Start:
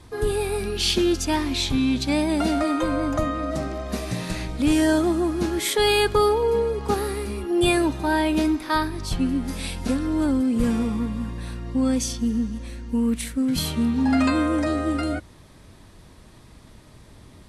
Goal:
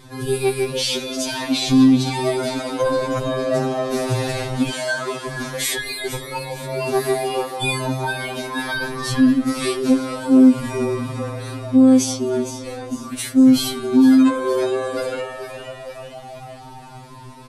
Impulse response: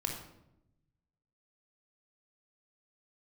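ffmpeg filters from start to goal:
-filter_complex "[0:a]asettb=1/sr,asplit=3[s0][s1][s2];[s0]atrim=end=4.704[s3];[s1]atrim=start=4.7:end=5.27,asetpts=PTS-STARTPTS,afade=t=in:d=0.004:c=qsin,afade=t=out:st=0.566:d=0.004:c=qsin,highpass=630,lowpass=7400[s4];[s2]atrim=start=5.266[s5];[s3][s4]acrossfade=d=0.004:c1=hsin:c2=qsin[s6];[s6][s5]acrossfade=d=0.004:c1=qsin:c2=hsin,asplit=7[s7][s8][s9][s10][s11][s12][s13];[s8]adelay=460,afreqshift=120,volume=0.251[s14];[s9]adelay=920,afreqshift=240,volume=0.138[s15];[s10]adelay=1380,afreqshift=360,volume=0.0759[s16];[s11]adelay=1840,afreqshift=480,volume=0.0417[s17];[s12]adelay=2300,afreqshift=600,volume=0.0229[s18];[s13]adelay=2760,afreqshift=720,volume=0.0126[s19];[s7][s14][s15][s16][s17][s18][s19]amix=inputs=7:normalize=0,alimiter=level_in=6.31:limit=0.891:release=50:level=0:latency=1,afftfilt=real='re*2.45*eq(mod(b,6),0)':imag='im*2.45*eq(mod(b,6),0)':win_size=2048:overlap=0.75,volume=0.398"

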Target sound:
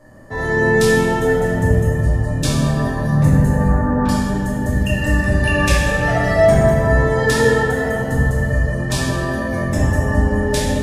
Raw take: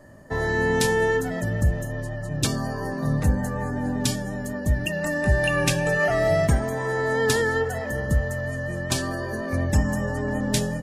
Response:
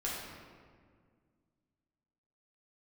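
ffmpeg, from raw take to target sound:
-filter_complex "[0:a]asettb=1/sr,asplit=3[s0][s1][s2];[s0]atrim=end=3.684[s3];[s1]atrim=start=3.68:end=4.09,asetpts=PTS-STARTPTS,afade=t=in:d=0.004:c=qsin,afade=t=out:st=0.406:d=0.004:c=qsin,lowpass=f=1300:t=q:w=3.3[s4];[s2]atrim=start=4.086[s5];[s3][s4]acrossfade=d=0.004:c1=hsin:c2=qsin[s6];[s6][s5]acrossfade=d=0.004:c1=qsin:c2=hsin[s7];[1:a]atrim=start_sample=2205,asetrate=29547,aresample=44100[s8];[s7][s8]afir=irnorm=-1:irlink=0"

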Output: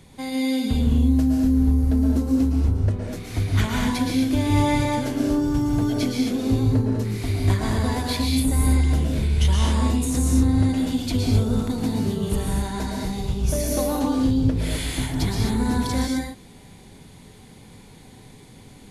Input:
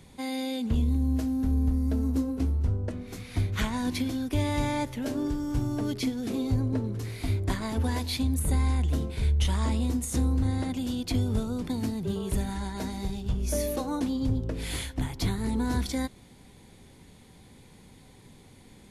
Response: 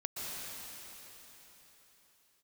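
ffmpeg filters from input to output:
-filter_complex "[1:a]atrim=start_sample=2205,afade=t=out:st=0.35:d=0.01,atrim=end_sample=15876,asetrate=48510,aresample=44100[s0];[0:a][s0]afir=irnorm=-1:irlink=0,volume=2.24"

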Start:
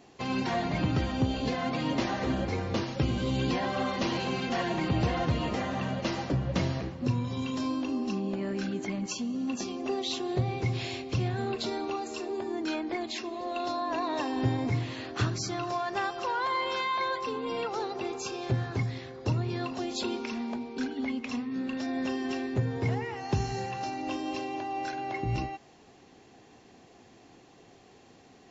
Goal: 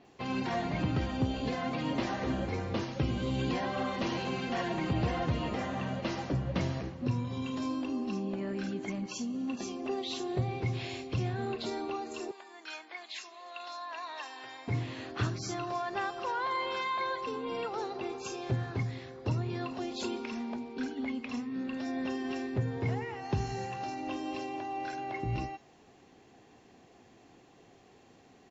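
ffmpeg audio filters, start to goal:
-filter_complex "[0:a]asettb=1/sr,asplit=3[s0][s1][s2];[s0]atrim=end=12.314[s3];[s1]atrim=start=12.31:end=14.68,asetpts=PTS-STARTPTS,afade=t=in:d=0.004:c=qsin,afade=t=out:st=2.366:d=0.004:c=qsin,highpass=1200[s4];[s2]atrim=start=14.676[s5];[s3][s4]acrossfade=d=0.004:c1=hsin:c2=qsin[s6];[s6][s5]acrossfade=d=0.004:c1=qsin:c2=hsin,acrossover=split=5000[s7][s8];[s8]adelay=50[s9];[s7][s9]amix=inputs=2:normalize=0,volume=0.708"

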